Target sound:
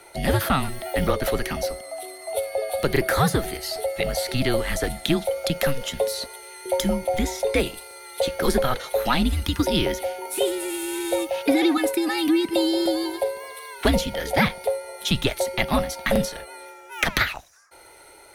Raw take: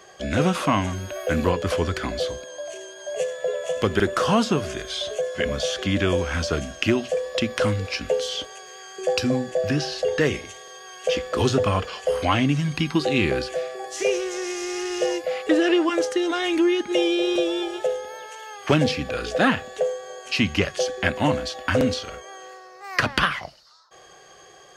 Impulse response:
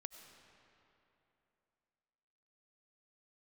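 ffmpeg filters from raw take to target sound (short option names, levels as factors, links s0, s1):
-af "highshelf=f=6800:t=q:w=3:g=6,asetrate=59535,aresample=44100,afreqshift=-140"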